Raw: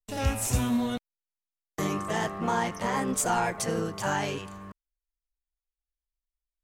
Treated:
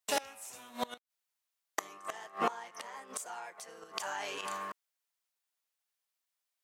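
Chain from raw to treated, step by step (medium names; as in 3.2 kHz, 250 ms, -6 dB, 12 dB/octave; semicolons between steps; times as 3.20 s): high-pass 640 Hz 12 dB/octave; inverted gate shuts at -27 dBFS, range -25 dB; 3.97–4.41 s: level flattener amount 70%; trim +9 dB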